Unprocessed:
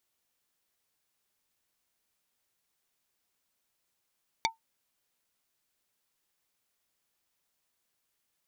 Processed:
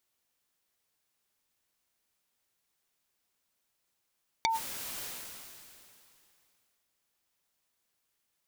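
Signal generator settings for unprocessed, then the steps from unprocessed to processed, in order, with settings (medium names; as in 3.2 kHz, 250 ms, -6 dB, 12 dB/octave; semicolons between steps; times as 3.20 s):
wood hit plate, lowest mode 902 Hz, decay 0.14 s, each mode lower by 0 dB, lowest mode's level -22 dB
decay stretcher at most 22 dB/s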